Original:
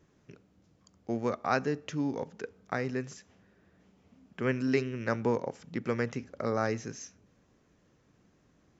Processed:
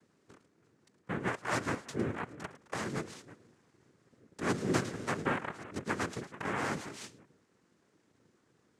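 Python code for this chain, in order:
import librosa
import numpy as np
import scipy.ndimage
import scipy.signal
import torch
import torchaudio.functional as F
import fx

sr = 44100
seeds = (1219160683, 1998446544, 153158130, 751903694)

y = fx.echo_stepped(x, sr, ms=108, hz=2600.0, octaves=-1.4, feedback_pct=70, wet_db=-9.0)
y = fx.noise_vocoder(y, sr, seeds[0], bands=3)
y = F.gain(torch.from_numpy(y), -3.5).numpy()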